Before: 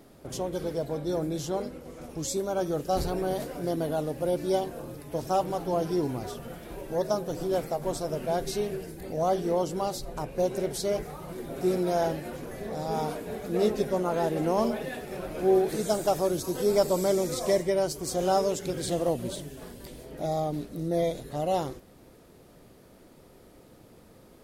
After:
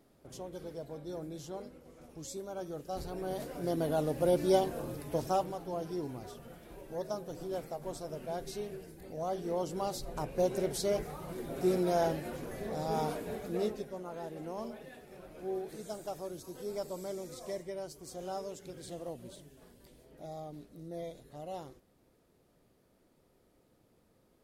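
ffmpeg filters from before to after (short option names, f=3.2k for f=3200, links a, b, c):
-af "volume=7dB,afade=t=in:st=3.05:d=1.21:silence=0.251189,afade=t=out:st=5.06:d=0.5:silence=0.316228,afade=t=in:st=9.31:d=0.91:silence=0.446684,afade=t=out:st=13.27:d=0.59:silence=0.251189"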